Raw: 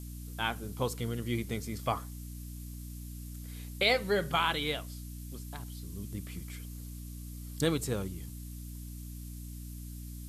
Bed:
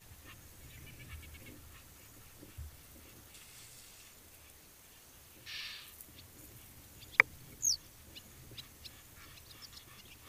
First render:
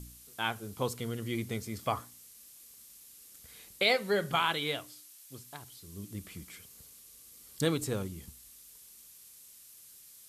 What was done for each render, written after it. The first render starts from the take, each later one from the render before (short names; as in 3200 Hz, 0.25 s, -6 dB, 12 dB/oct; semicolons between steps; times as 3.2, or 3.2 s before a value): de-hum 60 Hz, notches 5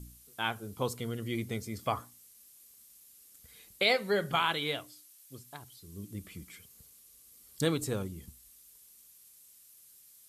denoiser 6 dB, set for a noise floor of -55 dBFS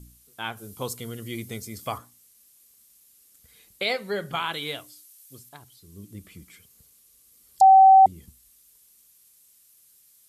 0.57–1.98 high shelf 4700 Hz +9.5 dB; 4.53–5.49 high shelf 4600 Hz +6.5 dB; 7.61–8.06 bleep 768 Hz -9 dBFS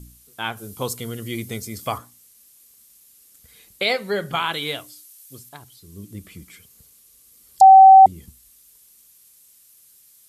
gain +5 dB